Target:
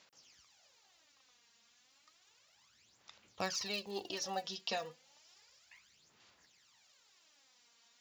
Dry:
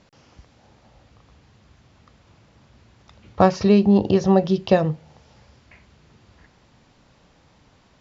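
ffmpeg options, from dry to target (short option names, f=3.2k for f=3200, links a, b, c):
-af "aphaser=in_gain=1:out_gain=1:delay=4.3:decay=0.64:speed=0.32:type=sinusoidal,aderivative,volume=-1dB"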